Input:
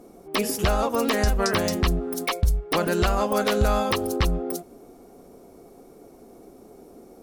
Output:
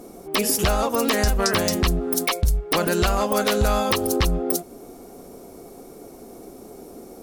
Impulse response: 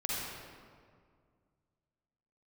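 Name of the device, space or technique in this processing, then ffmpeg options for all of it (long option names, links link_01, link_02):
clipper into limiter: -af "asoftclip=type=hard:threshold=-14dB,alimiter=limit=-19dB:level=0:latency=1:release=332,highshelf=frequency=3700:gain=6,volume=6dB"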